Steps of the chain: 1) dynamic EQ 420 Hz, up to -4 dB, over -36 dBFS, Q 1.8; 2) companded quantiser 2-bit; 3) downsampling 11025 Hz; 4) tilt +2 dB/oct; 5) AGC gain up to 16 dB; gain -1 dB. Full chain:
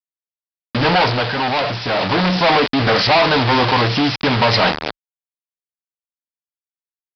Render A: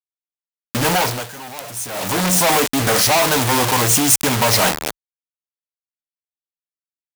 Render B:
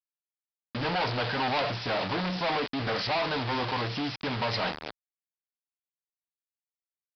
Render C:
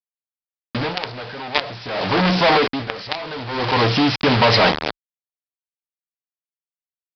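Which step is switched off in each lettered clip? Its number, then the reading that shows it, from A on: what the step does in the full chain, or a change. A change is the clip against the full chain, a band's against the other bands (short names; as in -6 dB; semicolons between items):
3, crest factor change +2.0 dB; 5, crest factor change +5.0 dB; 1, momentary loudness spread change +7 LU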